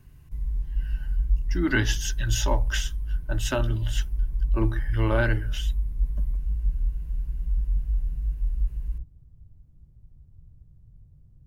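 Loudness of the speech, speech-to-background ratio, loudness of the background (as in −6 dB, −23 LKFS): −28.5 LKFS, 2.0 dB, −30.5 LKFS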